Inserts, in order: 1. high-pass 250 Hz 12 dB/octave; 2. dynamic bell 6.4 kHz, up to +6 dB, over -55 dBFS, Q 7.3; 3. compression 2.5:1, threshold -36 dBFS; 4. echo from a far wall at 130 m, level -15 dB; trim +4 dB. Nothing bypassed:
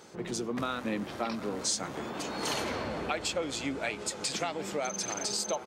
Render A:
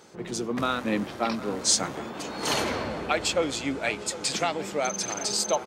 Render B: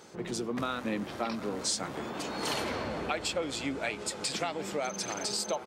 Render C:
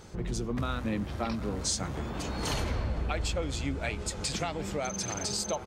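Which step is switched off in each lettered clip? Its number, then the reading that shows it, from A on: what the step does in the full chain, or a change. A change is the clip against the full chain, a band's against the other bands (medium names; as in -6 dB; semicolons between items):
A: 3, mean gain reduction 4.0 dB; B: 2, 8 kHz band -2.0 dB; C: 1, crest factor change -2.0 dB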